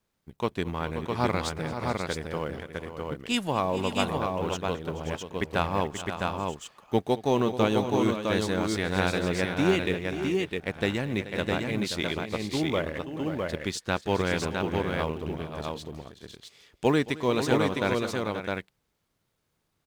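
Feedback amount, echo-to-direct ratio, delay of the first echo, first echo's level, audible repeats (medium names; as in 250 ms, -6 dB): no regular repeats, -2.5 dB, 222 ms, -19.0 dB, 4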